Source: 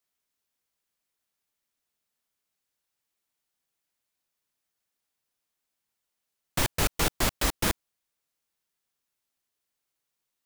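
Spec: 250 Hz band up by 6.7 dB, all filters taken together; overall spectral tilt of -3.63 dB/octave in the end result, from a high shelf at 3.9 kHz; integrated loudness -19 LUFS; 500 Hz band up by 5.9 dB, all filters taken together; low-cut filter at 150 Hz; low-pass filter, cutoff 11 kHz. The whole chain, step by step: high-pass 150 Hz; low-pass 11 kHz; peaking EQ 250 Hz +8 dB; peaking EQ 500 Hz +5 dB; treble shelf 3.9 kHz +3 dB; trim +7.5 dB

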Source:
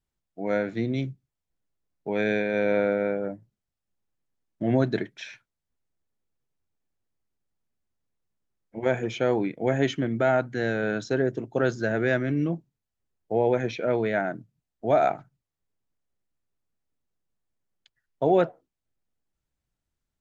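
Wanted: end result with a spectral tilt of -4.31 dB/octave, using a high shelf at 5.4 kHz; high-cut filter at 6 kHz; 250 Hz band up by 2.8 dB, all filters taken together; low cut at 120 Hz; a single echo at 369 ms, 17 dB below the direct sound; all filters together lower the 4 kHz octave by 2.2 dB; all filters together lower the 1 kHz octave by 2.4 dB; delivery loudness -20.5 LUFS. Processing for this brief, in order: high-pass 120 Hz; low-pass 6 kHz; peaking EQ 250 Hz +4 dB; peaking EQ 1 kHz -4.5 dB; peaking EQ 4 kHz -4 dB; treble shelf 5.4 kHz +5.5 dB; delay 369 ms -17 dB; trim +5.5 dB

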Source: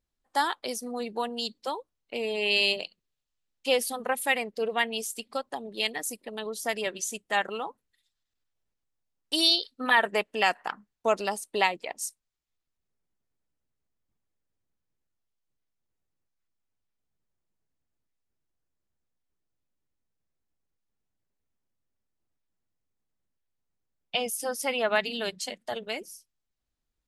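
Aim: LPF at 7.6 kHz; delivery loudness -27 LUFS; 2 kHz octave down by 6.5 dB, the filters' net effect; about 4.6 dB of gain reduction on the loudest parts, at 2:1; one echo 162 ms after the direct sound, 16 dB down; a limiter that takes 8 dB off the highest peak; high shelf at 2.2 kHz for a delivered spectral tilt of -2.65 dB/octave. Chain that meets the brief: low-pass 7.6 kHz; peaking EQ 2 kHz -5 dB; treble shelf 2.2 kHz -5.5 dB; compression 2:1, threshold -29 dBFS; peak limiter -23.5 dBFS; delay 162 ms -16 dB; trim +9.5 dB

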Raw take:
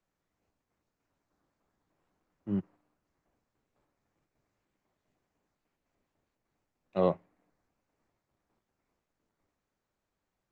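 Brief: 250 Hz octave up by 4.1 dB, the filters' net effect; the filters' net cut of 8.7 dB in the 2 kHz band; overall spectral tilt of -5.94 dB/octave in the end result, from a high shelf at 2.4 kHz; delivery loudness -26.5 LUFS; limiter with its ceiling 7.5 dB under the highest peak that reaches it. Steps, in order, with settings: peaking EQ 250 Hz +6.5 dB; peaking EQ 2 kHz -9 dB; treble shelf 2.4 kHz -5.5 dB; trim +9 dB; peak limiter -12 dBFS

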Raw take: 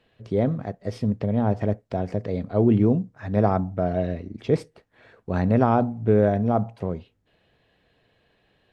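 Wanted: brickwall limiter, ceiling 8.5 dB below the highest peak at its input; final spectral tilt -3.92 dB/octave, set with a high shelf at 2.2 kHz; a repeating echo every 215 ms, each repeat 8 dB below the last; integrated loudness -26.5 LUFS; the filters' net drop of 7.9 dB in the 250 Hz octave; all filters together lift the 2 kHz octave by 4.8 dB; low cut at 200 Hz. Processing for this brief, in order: high-pass 200 Hz; peaking EQ 250 Hz -7.5 dB; peaking EQ 2 kHz +9 dB; treble shelf 2.2 kHz -5 dB; peak limiter -15 dBFS; feedback delay 215 ms, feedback 40%, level -8 dB; trim +2.5 dB

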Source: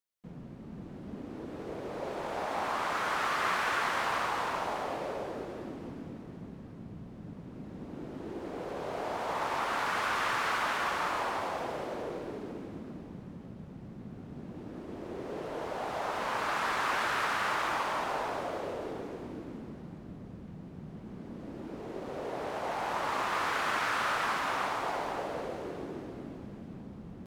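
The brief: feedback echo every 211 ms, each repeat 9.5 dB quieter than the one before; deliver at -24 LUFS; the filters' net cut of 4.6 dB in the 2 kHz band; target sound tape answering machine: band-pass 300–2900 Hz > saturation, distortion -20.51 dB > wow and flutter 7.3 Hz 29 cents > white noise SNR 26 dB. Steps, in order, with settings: band-pass 300–2900 Hz; peaking EQ 2 kHz -5.5 dB; feedback delay 211 ms, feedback 33%, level -9.5 dB; saturation -25.5 dBFS; wow and flutter 7.3 Hz 29 cents; white noise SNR 26 dB; trim +12.5 dB

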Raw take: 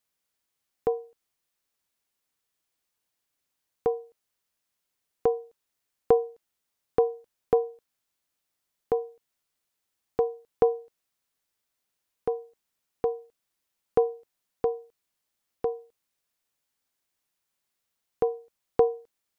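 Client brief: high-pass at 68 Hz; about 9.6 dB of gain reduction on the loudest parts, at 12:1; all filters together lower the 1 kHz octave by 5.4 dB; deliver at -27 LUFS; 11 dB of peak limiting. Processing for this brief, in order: high-pass 68 Hz; peaking EQ 1 kHz -9 dB; compression 12:1, threshold -28 dBFS; trim +15 dB; peak limiter -10 dBFS

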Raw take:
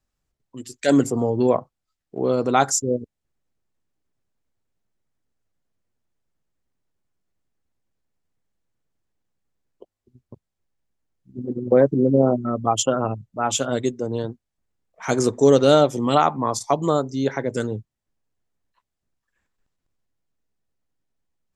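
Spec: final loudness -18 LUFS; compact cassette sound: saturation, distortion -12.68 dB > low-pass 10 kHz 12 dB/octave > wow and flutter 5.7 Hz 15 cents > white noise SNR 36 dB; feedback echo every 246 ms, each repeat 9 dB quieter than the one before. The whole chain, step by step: feedback delay 246 ms, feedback 35%, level -9 dB; saturation -12.5 dBFS; low-pass 10 kHz 12 dB/octave; wow and flutter 5.7 Hz 15 cents; white noise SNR 36 dB; trim +5 dB

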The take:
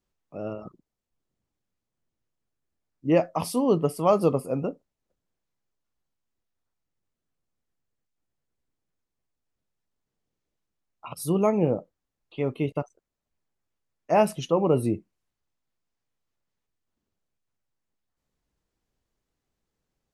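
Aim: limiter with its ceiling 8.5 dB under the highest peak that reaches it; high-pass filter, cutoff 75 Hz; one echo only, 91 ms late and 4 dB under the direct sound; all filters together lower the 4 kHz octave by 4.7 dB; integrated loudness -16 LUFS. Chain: high-pass 75 Hz; peaking EQ 4 kHz -7.5 dB; peak limiter -16 dBFS; delay 91 ms -4 dB; trim +11.5 dB

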